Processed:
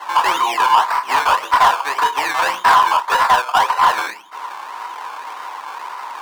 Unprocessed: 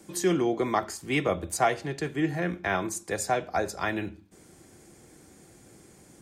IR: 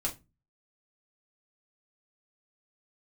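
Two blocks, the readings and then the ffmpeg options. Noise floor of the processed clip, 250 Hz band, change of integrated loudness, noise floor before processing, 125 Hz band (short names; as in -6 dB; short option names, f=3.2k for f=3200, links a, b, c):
-34 dBFS, -9.5 dB, +13.5 dB, -55 dBFS, under -10 dB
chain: -filter_complex "[1:a]atrim=start_sample=2205,asetrate=70560,aresample=44100[a];[0:a][a]afir=irnorm=-1:irlink=0,acrossover=split=2000[b][c];[b]alimiter=limit=-21.5dB:level=0:latency=1:release=355[d];[d][c]amix=inputs=2:normalize=0,acrusher=samples=18:mix=1:aa=0.000001:lfo=1:lforange=10.8:lforate=1.8,highpass=f=970:t=q:w=8.3,asplit=2[e][f];[f]acompressor=threshold=-43dB:ratio=6,volume=1dB[g];[e][g]amix=inputs=2:normalize=0,asplit=2[h][i];[i]highpass=f=720:p=1,volume=14dB,asoftclip=type=tanh:threshold=-12.5dB[j];[h][j]amix=inputs=2:normalize=0,lowpass=f=4.2k:p=1,volume=-6dB,volume=8dB"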